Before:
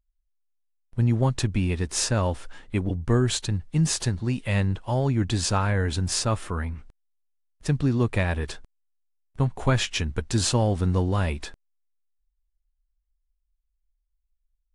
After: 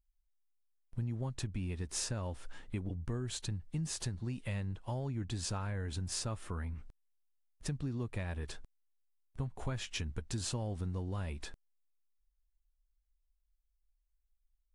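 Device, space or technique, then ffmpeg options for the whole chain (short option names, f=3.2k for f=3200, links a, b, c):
ASMR close-microphone chain: -af "lowshelf=f=230:g=4,acompressor=threshold=-29dB:ratio=4,highshelf=f=9.1k:g=5,volume=-7dB"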